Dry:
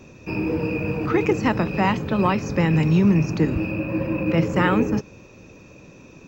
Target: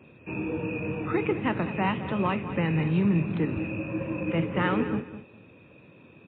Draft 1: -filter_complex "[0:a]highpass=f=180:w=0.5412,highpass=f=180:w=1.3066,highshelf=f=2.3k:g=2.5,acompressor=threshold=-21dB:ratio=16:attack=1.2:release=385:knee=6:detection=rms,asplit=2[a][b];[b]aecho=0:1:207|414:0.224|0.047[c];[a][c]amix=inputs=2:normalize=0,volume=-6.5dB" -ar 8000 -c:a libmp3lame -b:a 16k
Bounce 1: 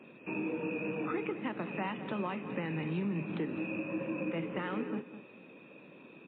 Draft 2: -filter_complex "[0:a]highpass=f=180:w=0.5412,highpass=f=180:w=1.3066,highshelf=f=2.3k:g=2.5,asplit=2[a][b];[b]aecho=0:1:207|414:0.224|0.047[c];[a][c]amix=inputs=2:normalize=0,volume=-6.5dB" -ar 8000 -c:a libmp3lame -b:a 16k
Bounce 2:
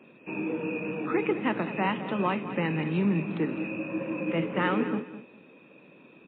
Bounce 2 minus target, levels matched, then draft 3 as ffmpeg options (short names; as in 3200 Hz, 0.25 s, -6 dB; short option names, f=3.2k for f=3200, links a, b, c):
125 Hz band -4.0 dB
-filter_complex "[0:a]highpass=f=78:w=0.5412,highpass=f=78:w=1.3066,highshelf=f=2.3k:g=2.5,asplit=2[a][b];[b]aecho=0:1:207|414:0.224|0.047[c];[a][c]amix=inputs=2:normalize=0,volume=-6.5dB" -ar 8000 -c:a libmp3lame -b:a 16k